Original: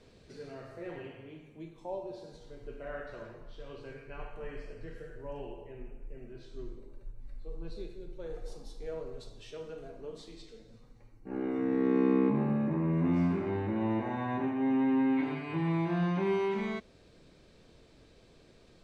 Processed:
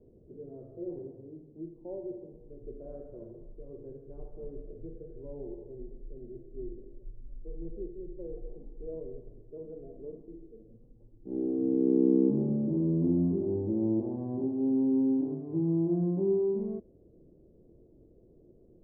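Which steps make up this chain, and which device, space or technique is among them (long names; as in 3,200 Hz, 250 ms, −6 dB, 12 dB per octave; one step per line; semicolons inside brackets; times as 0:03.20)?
under water (low-pass filter 540 Hz 24 dB per octave; parametric band 350 Hz +7 dB 0.33 octaves)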